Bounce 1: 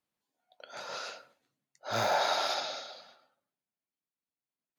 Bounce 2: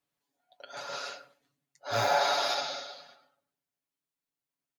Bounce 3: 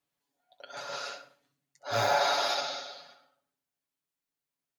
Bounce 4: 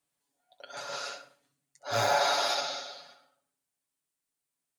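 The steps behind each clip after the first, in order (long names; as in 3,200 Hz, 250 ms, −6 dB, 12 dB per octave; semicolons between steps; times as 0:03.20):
comb filter 7.1 ms, depth 79%
flutter between parallel walls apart 11.1 metres, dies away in 0.32 s
parametric band 8,800 Hz +9.5 dB 0.57 octaves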